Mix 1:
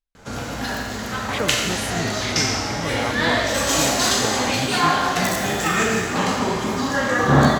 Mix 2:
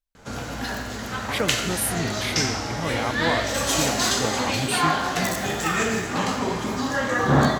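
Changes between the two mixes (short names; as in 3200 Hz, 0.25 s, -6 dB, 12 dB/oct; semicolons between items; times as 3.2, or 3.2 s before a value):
speech: remove air absorption 64 m; background: send -7.0 dB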